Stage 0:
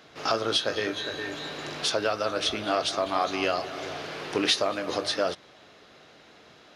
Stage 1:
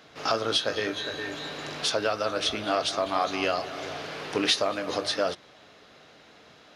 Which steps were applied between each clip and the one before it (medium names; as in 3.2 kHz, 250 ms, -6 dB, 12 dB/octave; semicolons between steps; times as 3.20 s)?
band-stop 360 Hz, Q 12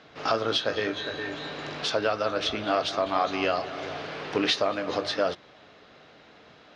distance through air 120 m; trim +1.5 dB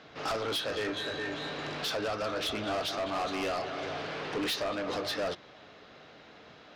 saturation -28.5 dBFS, distortion -7 dB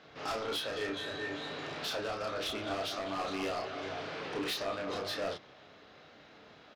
doubling 31 ms -3 dB; trim -5 dB